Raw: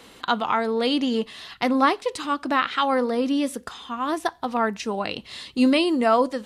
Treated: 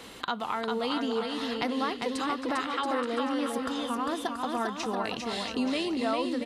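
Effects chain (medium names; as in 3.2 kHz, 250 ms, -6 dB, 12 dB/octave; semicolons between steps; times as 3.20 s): compression 3:1, threshold -34 dBFS, peak gain reduction 15 dB; on a send: bouncing-ball echo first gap 400 ms, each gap 0.7×, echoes 5; on the sum: trim +2 dB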